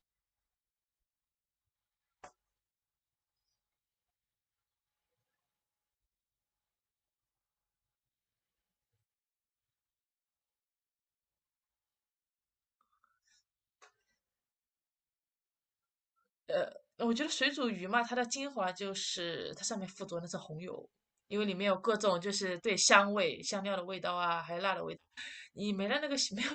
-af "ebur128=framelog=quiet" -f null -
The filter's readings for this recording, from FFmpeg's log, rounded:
Integrated loudness:
  I:         -33.7 LUFS
  Threshold: -44.5 LUFS
Loudness range:
  LRA:         8.1 LU
  Threshold: -55.5 LUFS
  LRA low:   -39.5 LUFS
  LRA high:  -31.3 LUFS